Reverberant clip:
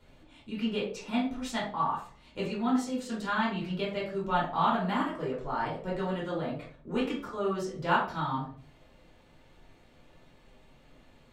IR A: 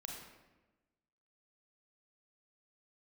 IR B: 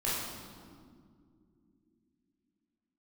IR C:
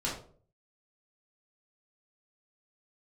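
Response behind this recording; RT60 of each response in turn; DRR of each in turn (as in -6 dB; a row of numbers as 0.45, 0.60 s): C; 1.1 s, not exponential, 0.50 s; -1.0, -8.5, -6.5 dB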